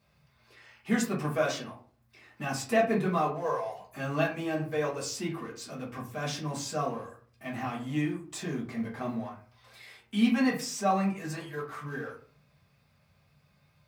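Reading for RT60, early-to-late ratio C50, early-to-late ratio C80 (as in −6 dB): 0.45 s, 9.0 dB, 14.0 dB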